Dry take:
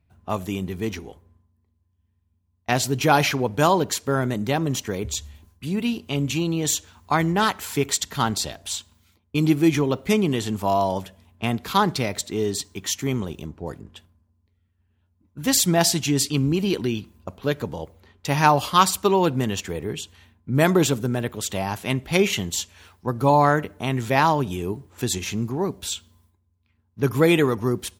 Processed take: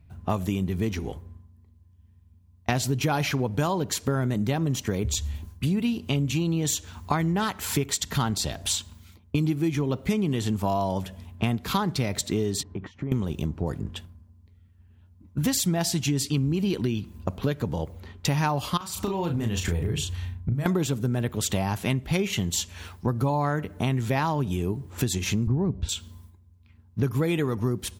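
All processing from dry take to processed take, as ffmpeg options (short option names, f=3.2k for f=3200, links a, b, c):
-filter_complex "[0:a]asettb=1/sr,asplit=3[a][b][c];[a]atrim=end=12.634[d];[b]atrim=start=12.63:end=13.12,asetpts=PTS-STARTPTS,afade=t=in:d=0.004:c=qsin,afade=t=out:st=0.486:d=0.004:c=qsin,acompressor=threshold=-36dB:ratio=16:attack=3.2:release=140:knee=1:detection=peak,lowpass=1.3k[e];[c]atrim=start=13.116[f];[d][e]acrossfade=d=0.004:c1=hsin:c2=qsin[g];[g][f]acrossfade=d=0.004:c1=qsin:c2=hsin,asettb=1/sr,asplit=3[h][i][j];[h]atrim=end=18.774[k];[i]atrim=start=18.77:end=20.66,asetpts=PTS-STARTPTS,afade=t=in:d=0.004:c=qsin,afade=t=out:st=1.886:d=0.004:c=qsin,asubboost=boost=8.5:cutoff=110,acompressor=threshold=-29dB:ratio=16:attack=3.2:release=140:knee=1:detection=peak,asplit=2[l][m];[m]adelay=35,volume=-5dB[n];[l][n]amix=inputs=2:normalize=0,atrim=end_sample=83349[o];[j]atrim=start=20.656[p];[k][o]acrossfade=d=0.004:c1=hsin:c2=qsin[q];[q][p]acrossfade=d=0.004:c1=qsin:c2=hsin,asettb=1/sr,asplit=3[r][s][t];[r]atrim=end=25.474[u];[s]atrim=start=25.47:end=25.89,asetpts=PTS-STARTPTS,afade=t=in:d=0.004:c=qsin,afade=t=out:st=0.416:d=0.004:c=qsin,lowpass=6k,aemphasis=mode=reproduction:type=riaa[v];[t]atrim=start=25.886[w];[u][v]acrossfade=d=0.004:c1=hsin:c2=qsin[x];[x][w]acrossfade=d=0.004:c1=qsin:c2=hsin,bass=f=250:g=7,treble=f=4k:g=0,acompressor=threshold=-29dB:ratio=6,volume=6dB"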